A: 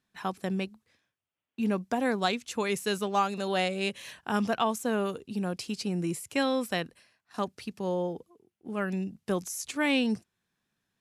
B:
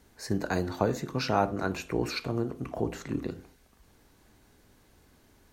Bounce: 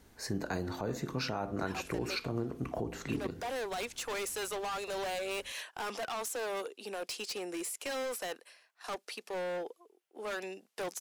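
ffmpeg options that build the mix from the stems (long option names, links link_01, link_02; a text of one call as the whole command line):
ffmpeg -i stem1.wav -i stem2.wav -filter_complex "[0:a]highpass=frequency=420:width=0.5412,highpass=frequency=420:width=1.3066,alimiter=limit=-22dB:level=0:latency=1:release=14,asoftclip=type=hard:threshold=-37.5dB,adelay=1500,volume=3dB[link_01];[1:a]volume=0dB[link_02];[link_01][link_02]amix=inputs=2:normalize=0,alimiter=limit=-23.5dB:level=0:latency=1:release=216" out.wav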